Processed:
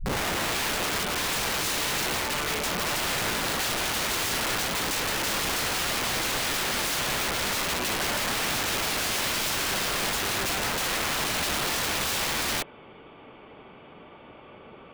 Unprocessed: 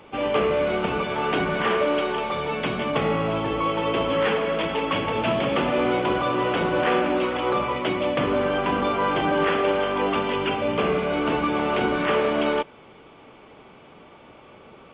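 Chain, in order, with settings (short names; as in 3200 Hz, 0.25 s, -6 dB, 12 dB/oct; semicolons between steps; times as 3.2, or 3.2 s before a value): tape start at the beginning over 0.66 s; wrapped overs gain 23 dB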